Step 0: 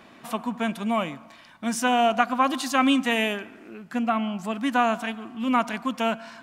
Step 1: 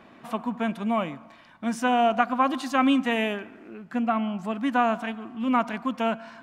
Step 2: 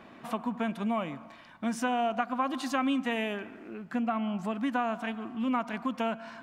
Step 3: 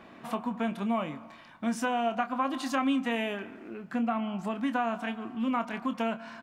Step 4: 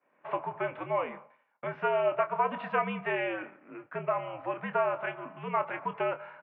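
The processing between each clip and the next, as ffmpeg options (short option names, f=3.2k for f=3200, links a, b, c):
-af "highshelf=f=3.5k:g=-11.5"
-af "acompressor=threshold=-29dB:ratio=2.5"
-filter_complex "[0:a]asplit=2[a][b];[b]adelay=26,volume=-10dB[c];[a][c]amix=inputs=2:normalize=0"
-af "agate=range=-33dB:threshold=-38dB:ratio=3:detection=peak,highpass=f=390:t=q:w=0.5412,highpass=f=390:t=q:w=1.307,lowpass=f=2.6k:t=q:w=0.5176,lowpass=f=2.6k:t=q:w=0.7071,lowpass=f=2.6k:t=q:w=1.932,afreqshift=-76,volume=2.5dB"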